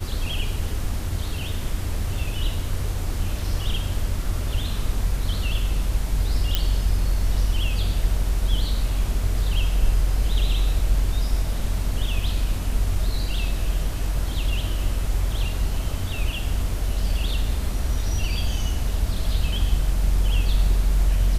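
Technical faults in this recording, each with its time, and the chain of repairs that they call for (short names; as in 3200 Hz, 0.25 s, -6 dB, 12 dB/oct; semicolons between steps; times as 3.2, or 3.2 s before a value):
6.55 pop -6 dBFS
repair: de-click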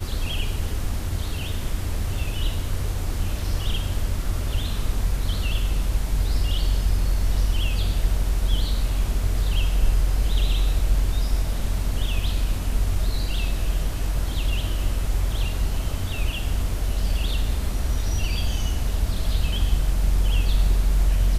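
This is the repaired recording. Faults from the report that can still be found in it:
none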